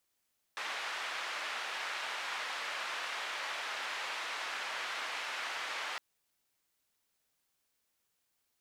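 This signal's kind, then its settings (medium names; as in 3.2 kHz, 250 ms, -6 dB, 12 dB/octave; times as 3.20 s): noise band 850–2400 Hz, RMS -39 dBFS 5.41 s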